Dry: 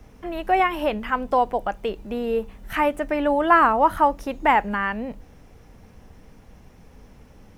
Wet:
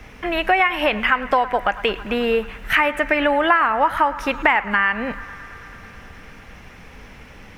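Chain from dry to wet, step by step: bell 2200 Hz +14 dB 1.9 oct; compressor 5:1, threshold -19 dBFS, peak gain reduction 15 dB; narrowing echo 0.109 s, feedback 85%, band-pass 1400 Hz, level -16 dB; gain +4.5 dB

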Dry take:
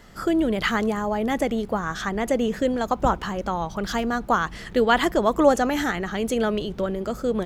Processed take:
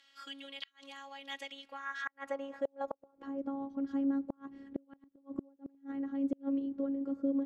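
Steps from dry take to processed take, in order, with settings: robotiser 275 Hz; band-pass sweep 3200 Hz -> 300 Hz, 1.53–3.44; flipped gate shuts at -22 dBFS, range -36 dB; gain -1.5 dB

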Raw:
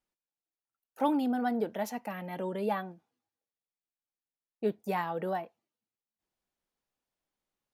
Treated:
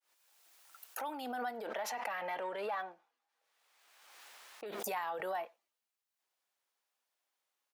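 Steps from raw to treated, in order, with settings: opening faded in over 2.45 s; limiter -30.5 dBFS, peak gain reduction 12 dB; speakerphone echo 90 ms, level -25 dB; 1.67–4.66 overdrive pedal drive 9 dB, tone 1800 Hz, clips at -30.5 dBFS; HPF 720 Hz 12 dB/oct; backwards sustainer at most 32 dB/s; gain +4.5 dB

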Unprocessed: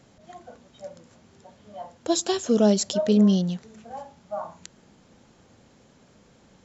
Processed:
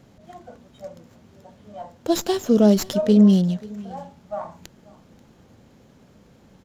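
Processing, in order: low shelf 420 Hz +6 dB; echo 0.536 s -22.5 dB; running maximum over 3 samples

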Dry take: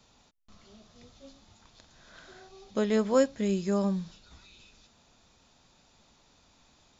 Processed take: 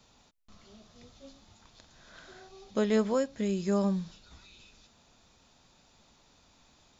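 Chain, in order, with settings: 3.11–3.6 compressor 2.5:1, threshold -27 dBFS, peak gain reduction 6.5 dB

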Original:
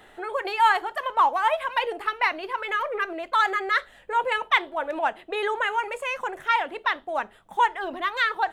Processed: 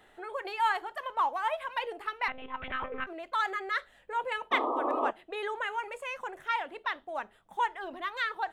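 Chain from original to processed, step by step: 2.28–3.07 monotone LPC vocoder at 8 kHz 260 Hz; 4.51–5.11 painted sound noise 240–1300 Hz -22 dBFS; gain -8.5 dB

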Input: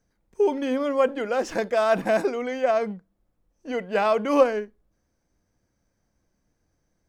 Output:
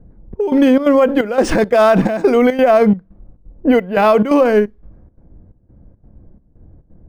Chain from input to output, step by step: low-pass opened by the level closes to 630 Hz, open at -22 dBFS; low shelf 240 Hz +11 dB; compressor 2.5:1, threshold -30 dBFS, peak gain reduction 13.5 dB; step gate "xxxx..xxx." 174 bpm -12 dB; maximiser +23.5 dB; decimation joined by straight lines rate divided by 3×; gain -2.5 dB

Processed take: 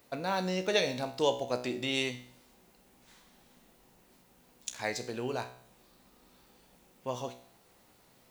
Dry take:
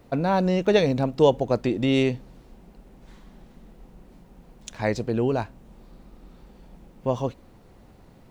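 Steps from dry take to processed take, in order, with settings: tilt +3.5 dB/oct; resonator 62 Hz, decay 0.56 s, harmonics all, mix 70%

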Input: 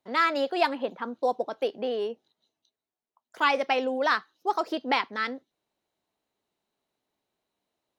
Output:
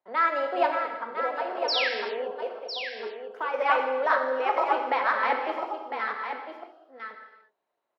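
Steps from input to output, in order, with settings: reverse delay 0.512 s, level 0 dB; three-band isolator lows -18 dB, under 410 Hz, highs -17 dB, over 2100 Hz; 0.68–3.54 compressor, threshold -29 dBFS, peak gain reduction 10.5 dB; 1.68–1.89 painted sound fall 1500–5800 Hz -27 dBFS; echo 1.004 s -8 dB; non-linear reverb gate 0.41 s falling, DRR 4 dB

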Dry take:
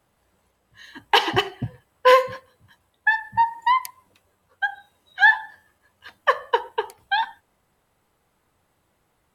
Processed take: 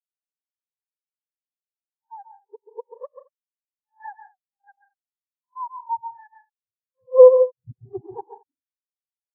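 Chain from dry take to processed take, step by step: whole clip reversed; tilt shelf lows +8.5 dB, about 1400 Hz; treble ducked by the level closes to 1400 Hz, closed at -16.5 dBFS; running mean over 10 samples; on a send: loudspeakers at several distances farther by 47 m -4 dB, 59 m -9 dB, 76 m -11 dB; on the sum: spectral expander 2.5:1; gain -1 dB

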